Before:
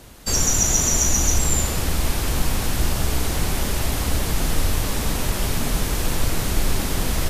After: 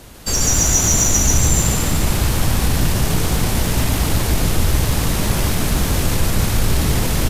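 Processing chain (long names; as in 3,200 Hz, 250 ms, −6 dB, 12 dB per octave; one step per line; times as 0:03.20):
in parallel at −5 dB: soft clipping −23.5 dBFS, distortion −8 dB
on the sum: echo with shifted repeats 144 ms, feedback 55%, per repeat +50 Hz, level −4 dB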